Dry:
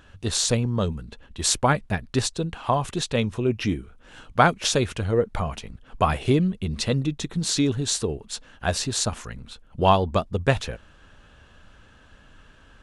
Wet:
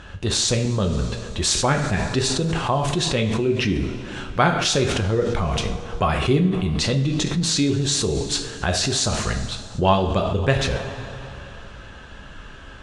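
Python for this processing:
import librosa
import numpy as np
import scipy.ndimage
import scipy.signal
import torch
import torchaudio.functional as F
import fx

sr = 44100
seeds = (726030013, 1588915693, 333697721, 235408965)

p1 = scipy.signal.sosfilt(scipy.signal.butter(2, 7700.0, 'lowpass', fs=sr, output='sos'), x)
p2 = fx.rev_double_slope(p1, sr, seeds[0], early_s=0.47, late_s=3.0, knee_db=-18, drr_db=3.5)
p3 = fx.dynamic_eq(p2, sr, hz=890.0, q=1.1, threshold_db=-32.0, ratio=4.0, max_db=-4)
p4 = fx.over_compress(p3, sr, threshold_db=-32.0, ratio=-1.0)
y = p3 + (p4 * 10.0 ** (1.0 / 20.0))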